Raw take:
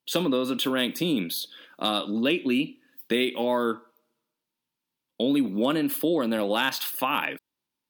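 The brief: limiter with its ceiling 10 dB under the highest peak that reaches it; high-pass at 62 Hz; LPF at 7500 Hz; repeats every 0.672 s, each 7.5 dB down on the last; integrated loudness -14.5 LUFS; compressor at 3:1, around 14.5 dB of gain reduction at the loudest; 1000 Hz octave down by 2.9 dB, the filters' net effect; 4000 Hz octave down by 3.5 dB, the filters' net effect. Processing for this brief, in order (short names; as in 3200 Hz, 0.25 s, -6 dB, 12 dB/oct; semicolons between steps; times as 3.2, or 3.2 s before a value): HPF 62 Hz; LPF 7500 Hz; bell 1000 Hz -3.5 dB; bell 4000 Hz -4 dB; compressor 3:1, threshold -41 dBFS; limiter -32.5 dBFS; feedback echo 0.672 s, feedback 42%, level -7.5 dB; gain +27.5 dB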